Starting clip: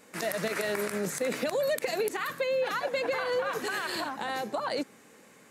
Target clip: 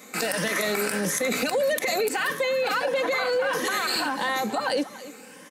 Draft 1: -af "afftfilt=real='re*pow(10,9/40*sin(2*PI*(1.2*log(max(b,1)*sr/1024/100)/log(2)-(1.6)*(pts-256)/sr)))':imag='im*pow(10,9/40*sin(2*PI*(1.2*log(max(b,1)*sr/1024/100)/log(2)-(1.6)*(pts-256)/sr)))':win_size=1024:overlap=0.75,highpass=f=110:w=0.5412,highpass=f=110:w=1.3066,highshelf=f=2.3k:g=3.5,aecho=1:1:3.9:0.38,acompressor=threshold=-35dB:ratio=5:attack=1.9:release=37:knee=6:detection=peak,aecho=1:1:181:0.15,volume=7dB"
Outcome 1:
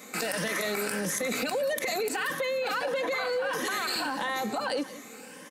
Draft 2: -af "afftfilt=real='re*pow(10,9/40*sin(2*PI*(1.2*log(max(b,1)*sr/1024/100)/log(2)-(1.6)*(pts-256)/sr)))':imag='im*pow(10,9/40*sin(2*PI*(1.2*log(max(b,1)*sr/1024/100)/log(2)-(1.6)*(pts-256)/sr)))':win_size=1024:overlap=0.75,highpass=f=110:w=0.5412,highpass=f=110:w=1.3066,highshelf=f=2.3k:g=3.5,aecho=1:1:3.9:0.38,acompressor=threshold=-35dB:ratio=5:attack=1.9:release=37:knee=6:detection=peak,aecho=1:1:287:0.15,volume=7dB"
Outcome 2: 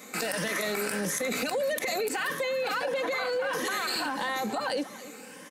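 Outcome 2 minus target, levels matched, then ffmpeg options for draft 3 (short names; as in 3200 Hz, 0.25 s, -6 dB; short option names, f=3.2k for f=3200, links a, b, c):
compressor: peak gain reduction +5 dB
-af "afftfilt=real='re*pow(10,9/40*sin(2*PI*(1.2*log(max(b,1)*sr/1024/100)/log(2)-(1.6)*(pts-256)/sr)))':imag='im*pow(10,9/40*sin(2*PI*(1.2*log(max(b,1)*sr/1024/100)/log(2)-(1.6)*(pts-256)/sr)))':win_size=1024:overlap=0.75,highpass=f=110:w=0.5412,highpass=f=110:w=1.3066,highshelf=f=2.3k:g=3.5,aecho=1:1:3.9:0.38,acompressor=threshold=-28.5dB:ratio=5:attack=1.9:release=37:knee=6:detection=peak,aecho=1:1:287:0.15,volume=7dB"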